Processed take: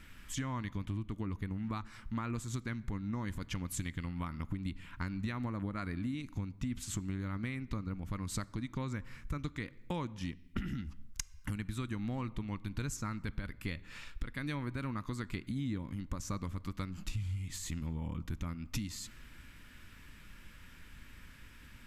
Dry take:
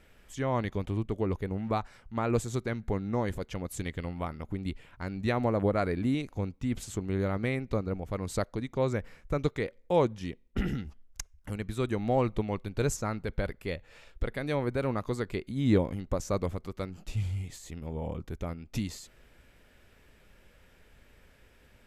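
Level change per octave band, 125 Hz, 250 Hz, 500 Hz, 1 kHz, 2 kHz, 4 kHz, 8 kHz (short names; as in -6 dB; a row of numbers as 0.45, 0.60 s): -5.0, -6.0, -18.0, -9.5, -5.0, -2.5, -1.0 dB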